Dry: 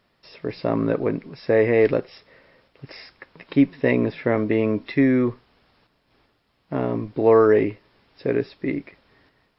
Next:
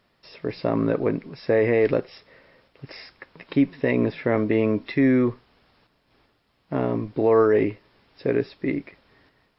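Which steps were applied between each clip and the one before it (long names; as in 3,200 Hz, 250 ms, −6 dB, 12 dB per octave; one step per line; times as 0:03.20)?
brickwall limiter −9.5 dBFS, peak gain reduction 4.5 dB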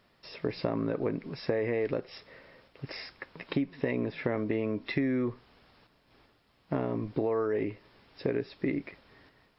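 downward compressor 10 to 1, threshold −26 dBFS, peak gain reduction 13 dB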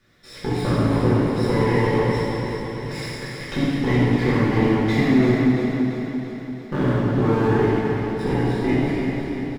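lower of the sound and its delayed copy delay 0.55 ms
repeating echo 340 ms, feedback 58%, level −7.5 dB
convolution reverb RT60 2.6 s, pre-delay 3 ms, DRR −10.5 dB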